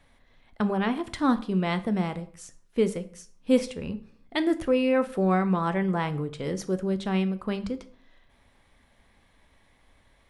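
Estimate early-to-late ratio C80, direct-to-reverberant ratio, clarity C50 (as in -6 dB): 20.0 dB, 10.5 dB, 16.5 dB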